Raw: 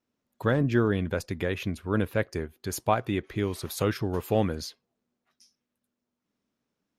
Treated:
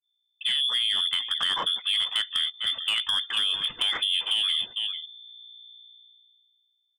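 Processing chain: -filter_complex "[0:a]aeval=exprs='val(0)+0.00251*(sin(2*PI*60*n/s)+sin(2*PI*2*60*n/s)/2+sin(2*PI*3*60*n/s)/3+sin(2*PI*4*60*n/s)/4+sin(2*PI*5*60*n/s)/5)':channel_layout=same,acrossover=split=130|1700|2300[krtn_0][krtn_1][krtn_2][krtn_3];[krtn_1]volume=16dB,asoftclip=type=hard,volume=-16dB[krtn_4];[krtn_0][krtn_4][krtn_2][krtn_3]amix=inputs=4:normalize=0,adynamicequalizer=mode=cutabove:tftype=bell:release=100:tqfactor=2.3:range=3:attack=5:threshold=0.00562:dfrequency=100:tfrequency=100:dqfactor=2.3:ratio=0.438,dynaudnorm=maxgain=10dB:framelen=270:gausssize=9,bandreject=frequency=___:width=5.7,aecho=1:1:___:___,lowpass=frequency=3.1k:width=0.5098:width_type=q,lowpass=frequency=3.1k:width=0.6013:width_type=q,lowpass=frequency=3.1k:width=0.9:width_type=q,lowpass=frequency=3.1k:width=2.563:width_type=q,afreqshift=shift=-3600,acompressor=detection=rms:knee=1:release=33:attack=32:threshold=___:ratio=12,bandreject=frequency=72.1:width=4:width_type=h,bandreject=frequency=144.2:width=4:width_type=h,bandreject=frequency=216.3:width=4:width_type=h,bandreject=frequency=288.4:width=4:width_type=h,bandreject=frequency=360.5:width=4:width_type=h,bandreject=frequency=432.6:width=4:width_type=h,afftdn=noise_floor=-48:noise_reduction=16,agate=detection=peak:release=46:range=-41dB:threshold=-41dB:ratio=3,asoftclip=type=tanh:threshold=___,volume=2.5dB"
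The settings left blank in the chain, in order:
1.3k, 447, 0.15, -26dB, -20.5dB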